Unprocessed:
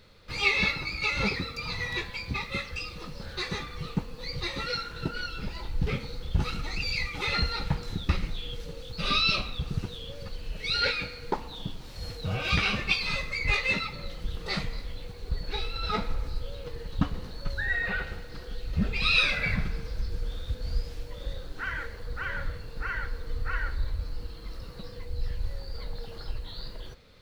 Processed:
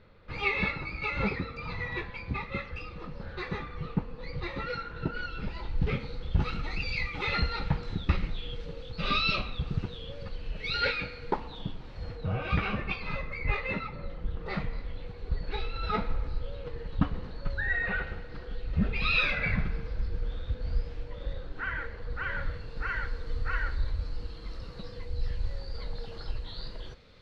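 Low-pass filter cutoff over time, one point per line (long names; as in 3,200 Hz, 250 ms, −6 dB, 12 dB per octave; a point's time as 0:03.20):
0:04.97 2,000 Hz
0:05.61 3,200 Hz
0:11.50 3,200 Hz
0:12.43 1,600 Hz
0:14.36 1,600 Hz
0:15.11 2,700 Hz
0:21.88 2,700 Hz
0:23.03 5,500 Hz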